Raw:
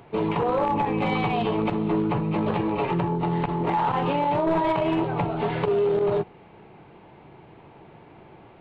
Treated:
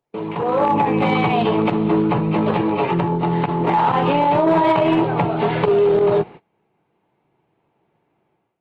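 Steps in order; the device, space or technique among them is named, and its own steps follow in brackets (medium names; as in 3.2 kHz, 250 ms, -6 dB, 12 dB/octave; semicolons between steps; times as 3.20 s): video call (high-pass 110 Hz 12 dB/octave; level rider gain up to 12 dB; gate -31 dBFS, range -27 dB; trim -3 dB; Opus 32 kbps 48 kHz)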